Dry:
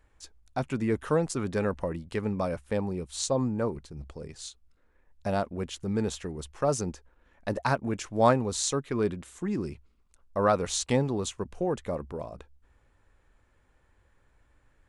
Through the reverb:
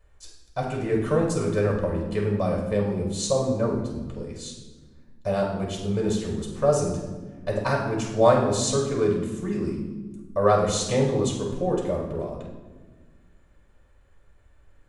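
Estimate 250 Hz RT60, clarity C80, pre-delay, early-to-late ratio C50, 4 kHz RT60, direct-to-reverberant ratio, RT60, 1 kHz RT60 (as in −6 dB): 2.3 s, 6.5 dB, 3 ms, 3.5 dB, 0.95 s, −3.0 dB, 1.4 s, 1.1 s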